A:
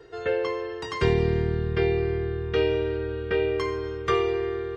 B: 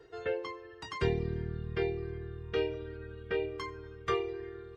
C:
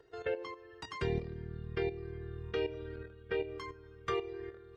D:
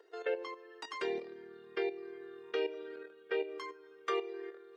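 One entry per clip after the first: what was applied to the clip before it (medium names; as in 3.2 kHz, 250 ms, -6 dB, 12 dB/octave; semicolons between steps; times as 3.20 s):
reverb removal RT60 1.2 s; trim -7 dB
level held to a coarse grid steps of 11 dB; trim +1 dB
high-pass 330 Hz 24 dB/octave; trim +1 dB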